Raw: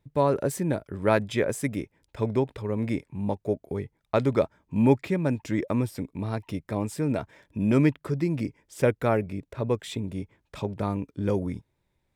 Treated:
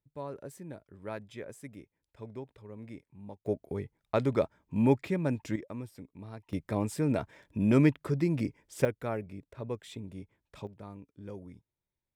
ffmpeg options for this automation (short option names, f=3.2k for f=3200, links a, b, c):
-af "asetnsamples=n=441:p=0,asendcmd='3.46 volume volume -4.5dB;5.56 volume volume -14.5dB;6.53 volume volume -2dB;8.85 volume volume -10.5dB;10.67 volume volume -17.5dB',volume=-17.5dB"